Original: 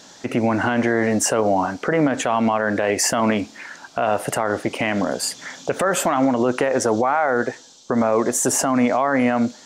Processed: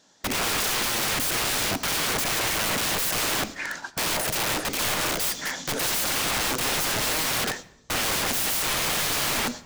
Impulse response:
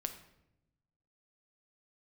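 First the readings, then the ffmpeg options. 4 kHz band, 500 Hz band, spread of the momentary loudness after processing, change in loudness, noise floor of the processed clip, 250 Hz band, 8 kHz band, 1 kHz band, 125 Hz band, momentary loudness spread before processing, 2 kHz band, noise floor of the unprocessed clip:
+7.5 dB, -13.0 dB, 5 LU, -3.5 dB, -51 dBFS, -14.5 dB, -0.5 dB, -8.0 dB, -6.5 dB, 7 LU, -1.5 dB, -46 dBFS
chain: -filter_complex "[0:a]aeval=exprs='(mod(18.8*val(0)+1,2)-1)/18.8':c=same,agate=range=-20dB:threshold=-40dB:ratio=16:detection=peak,asplit=2[a][b];[1:a]atrim=start_sample=2205[c];[b][c]afir=irnorm=-1:irlink=0,volume=-1.5dB[d];[a][d]amix=inputs=2:normalize=0"

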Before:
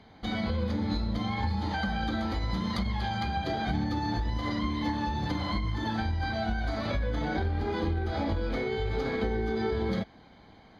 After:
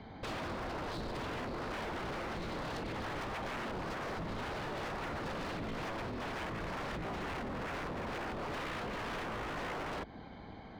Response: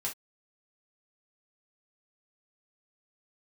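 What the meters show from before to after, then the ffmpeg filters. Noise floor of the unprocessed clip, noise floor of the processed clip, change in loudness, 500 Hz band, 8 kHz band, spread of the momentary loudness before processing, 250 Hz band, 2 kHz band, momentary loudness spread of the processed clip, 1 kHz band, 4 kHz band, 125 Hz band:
-54 dBFS, -50 dBFS, -8.5 dB, -7.0 dB, n/a, 1 LU, -11.5 dB, -4.5 dB, 1 LU, -6.0 dB, -7.5 dB, -13.5 dB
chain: -filter_complex "[0:a]aemphasis=mode=reproduction:type=75fm,acrossover=split=630[a][b];[a]alimiter=level_in=3.5dB:limit=-24dB:level=0:latency=1:release=74,volume=-3.5dB[c];[b]acompressor=threshold=-46dB:ratio=6[d];[c][d]amix=inputs=2:normalize=0,aeval=exprs='0.0112*(abs(mod(val(0)/0.0112+3,4)-2)-1)':c=same,volume=4.5dB"

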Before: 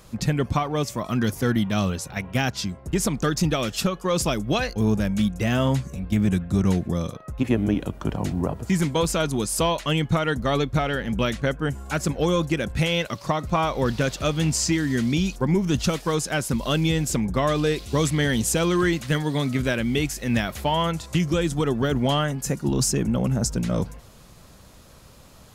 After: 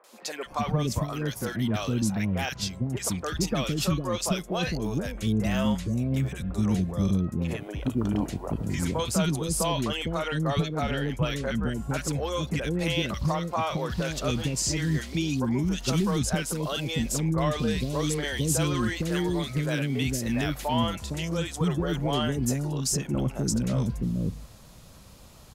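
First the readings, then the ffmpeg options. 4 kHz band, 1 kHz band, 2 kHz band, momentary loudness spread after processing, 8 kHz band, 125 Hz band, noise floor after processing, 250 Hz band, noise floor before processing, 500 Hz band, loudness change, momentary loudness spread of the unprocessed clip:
-3.5 dB, -5.0 dB, -5.5 dB, 4 LU, -2.5 dB, -3.0 dB, -48 dBFS, -4.0 dB, -48 dBFS, -5.5 dB, -4.0 dB, 5 LU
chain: -filter_complex "[0:a]asplit=2[a][b];[b]alimiter=limit=-20.5dB:level=0:latency=1,volume=-0.5dB[c];[a][c]amix=inputs=2:normalize=0,acrossover=split=420|1500[d][e][f];[f]adelay=40[g];[d]adelay=460[h];[h][e][g]amix=inputs=3:normalize=0,volume=-6.5dB"

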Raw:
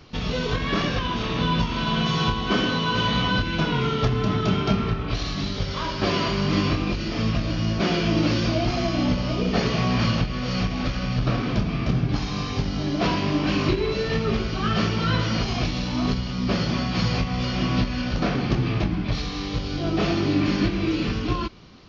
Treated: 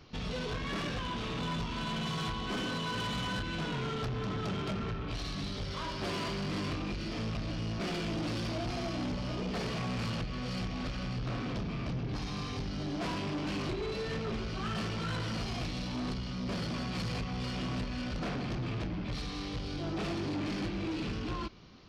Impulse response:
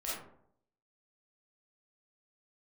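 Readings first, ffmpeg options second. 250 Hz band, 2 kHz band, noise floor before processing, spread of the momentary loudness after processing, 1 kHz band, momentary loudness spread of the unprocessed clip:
-12.0 dB, -11.0 dB, -29 dBFS, 3 LU, -11.5 dB, 5 LU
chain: -af "asoftclip=type=tanh:threshold=-24.5dB,volume=-7dB"

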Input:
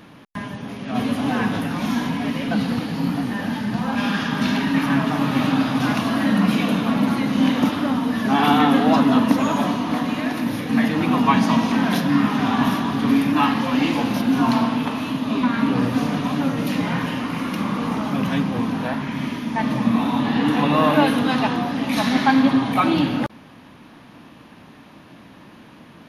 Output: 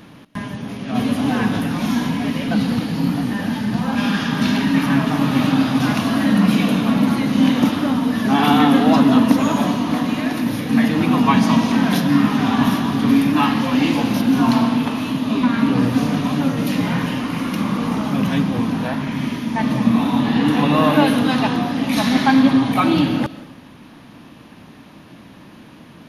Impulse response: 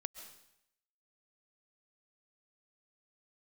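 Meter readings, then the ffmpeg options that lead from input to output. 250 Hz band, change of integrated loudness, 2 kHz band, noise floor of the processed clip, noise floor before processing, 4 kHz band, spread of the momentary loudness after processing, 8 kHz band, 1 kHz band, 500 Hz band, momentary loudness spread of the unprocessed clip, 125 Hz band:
+3.0 dB, +2.5 dB, +1.0 dB, -43 dBFS, -45 dBFS, +2.5 dB, 8 LU, +4.0 dB, +0.5 dB, +1.5 dB, 8 LU, +4.0 dB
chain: -filter_complex "[0:a]asplit=2[a][b];[b]equalizer=f=1.1k:t=o:w=2.7:g=-9[c];[1:a]atrim=start_sample=2205[d];[c][d]afir=irnorm=-1:irlink=0,volume=5.5dB[e];[a][e]amix=inputs=2:normalize=0,volume=-3dB"

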